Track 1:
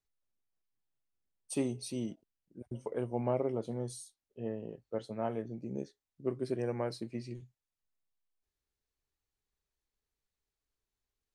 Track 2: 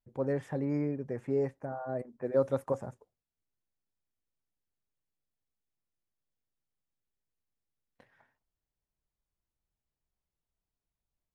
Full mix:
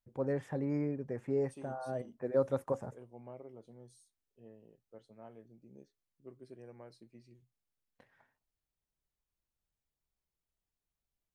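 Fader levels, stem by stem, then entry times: -17.5 dB, -2.5 dB; 0.00 s, 0.00 s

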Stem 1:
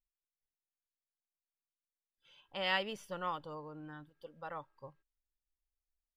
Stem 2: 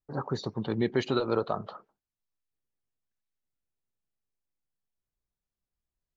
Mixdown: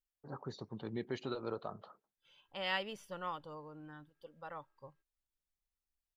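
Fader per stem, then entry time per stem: -3.0 dB, -12.5 dB; 0.00 s, 0.15 s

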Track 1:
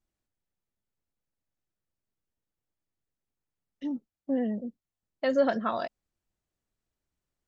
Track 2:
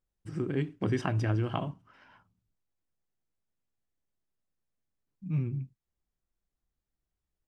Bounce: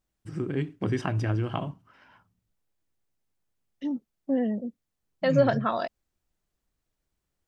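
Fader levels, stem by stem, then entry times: +2.5 dB, +1.5 dB; 0.00 s, 0.00 s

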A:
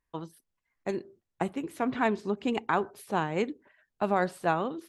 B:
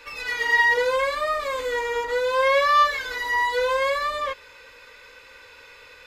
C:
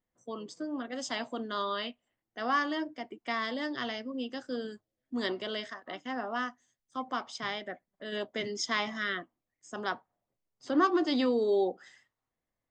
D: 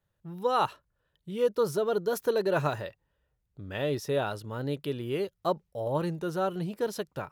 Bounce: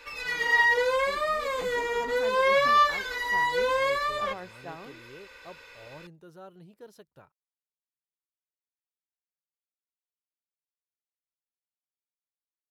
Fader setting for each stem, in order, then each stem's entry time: -15.0 dB, -3.0 dB, mute, -18.0 dB; 0.20 s, 0.00 s, mute, 0.00 s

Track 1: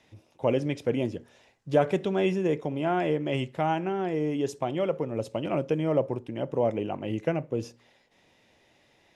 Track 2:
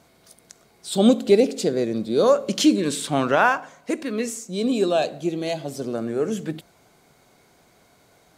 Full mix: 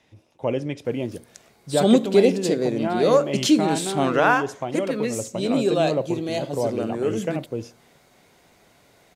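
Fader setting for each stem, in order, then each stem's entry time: +0.5 dB, -0.5 dB; 0.00 s, 0.85 s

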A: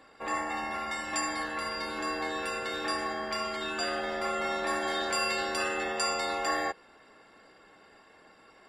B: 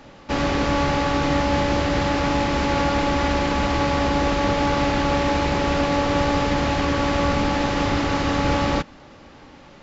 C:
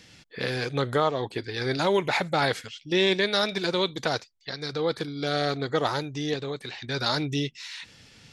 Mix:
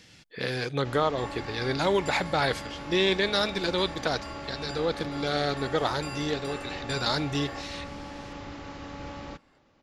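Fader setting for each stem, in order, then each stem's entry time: -10.5 dB, -19.0 dB, -1.5 dB; 0.90 s, 0.55 s, 0.00 s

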